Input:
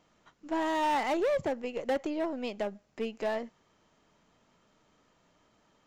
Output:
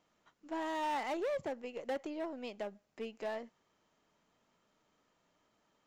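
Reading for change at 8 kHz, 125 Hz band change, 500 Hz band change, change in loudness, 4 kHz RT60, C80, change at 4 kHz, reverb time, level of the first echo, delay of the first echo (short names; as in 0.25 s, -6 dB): n/a, under -10 dB, -7.5 dB, -7.5 dB, none, none, -7.0 dB, none, none, none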